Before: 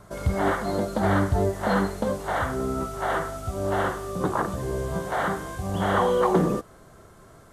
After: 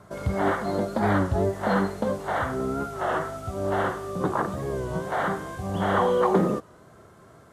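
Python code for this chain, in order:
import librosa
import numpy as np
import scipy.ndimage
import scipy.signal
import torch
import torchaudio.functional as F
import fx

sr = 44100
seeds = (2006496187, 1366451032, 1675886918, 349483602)

y = scipy.signal.sosfilt(scipy.signal.butter(2, 82.0, 'highpass', fs=sr, output='sos'), x)
y = fx.high_shelf(y, sr, hz=4600.0, db=-6.5)
y = fx.record_warp(y, sr, rpm=33.33, depth_cents=100.0)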